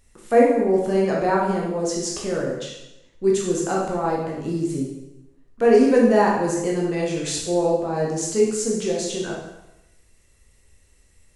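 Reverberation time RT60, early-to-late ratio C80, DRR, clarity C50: 0.95 s, 5.0 dB, -3.5 dB, 1.5 dB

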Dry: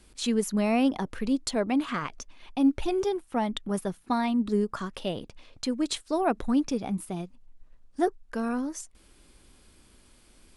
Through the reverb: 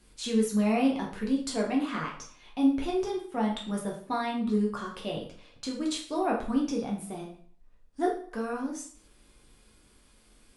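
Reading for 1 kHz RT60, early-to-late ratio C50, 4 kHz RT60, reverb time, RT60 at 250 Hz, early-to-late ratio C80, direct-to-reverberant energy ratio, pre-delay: 0.55 s, 6.5 dB, 0.45 s, 0.50 s, 0.55 s, 10.5 dB, -2.5 dB, 7 ms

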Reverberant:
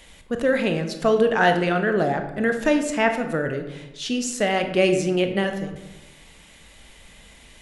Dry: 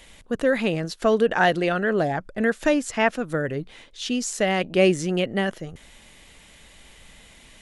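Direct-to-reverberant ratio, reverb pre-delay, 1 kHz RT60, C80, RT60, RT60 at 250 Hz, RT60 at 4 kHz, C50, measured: 6.0 dB, 21 ms, 1.0 s, 10.5 dB, 1.1 s, 1.2 s, 0.60 s, 8.5 dB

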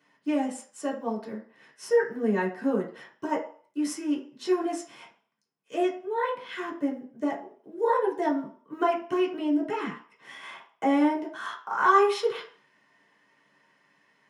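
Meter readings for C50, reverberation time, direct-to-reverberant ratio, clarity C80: 10.0 dB, 0.50 s, -4.5 dB, 14.0 dB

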